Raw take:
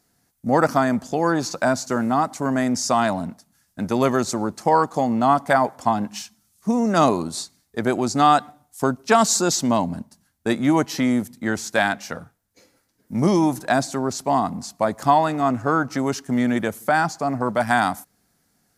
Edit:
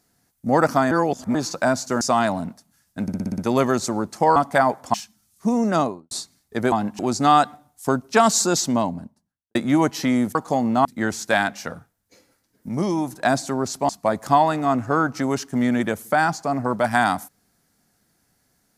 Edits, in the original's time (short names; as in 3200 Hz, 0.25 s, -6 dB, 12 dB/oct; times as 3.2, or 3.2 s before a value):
0.91–1.35 reverse
2.01–2.82 cut
3.83 stutter 0.06 s, 7 plays
4.81–5.31 move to 11.3
5.89–6.16 move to 7.94
6.83–7.33 studio fade out
9.5–10.5 studio fade out
13.14–13.68 gain -5 dB
14.34–14.65 cut